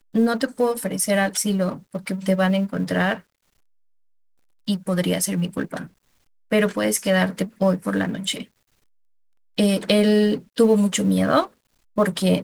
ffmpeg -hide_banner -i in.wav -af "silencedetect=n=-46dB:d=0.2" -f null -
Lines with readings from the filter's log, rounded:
silence_start: 3.21
silence_end: 4.67 | silence_duration: 1.46
silence_start: 5.89
silence_end: 6.51 | silence_duration: 0.62
silence_start: 8.45
silence_end: 9.58 | silence_duration: 1.12
silence_start: 11.50
silence_end: 11.96 | silence_duration: 0.46